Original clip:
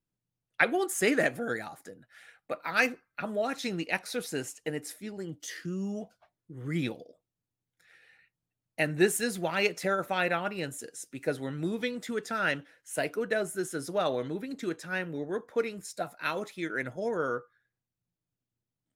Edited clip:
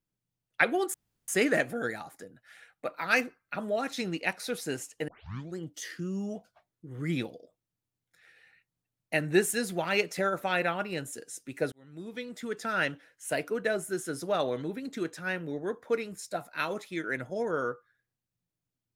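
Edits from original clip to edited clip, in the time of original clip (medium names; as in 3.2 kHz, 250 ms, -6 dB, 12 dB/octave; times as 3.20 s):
0.94 s: insert room tone 0.34 s
4.74 s: tape start 0.49 s
11.38–12.38 s: fade in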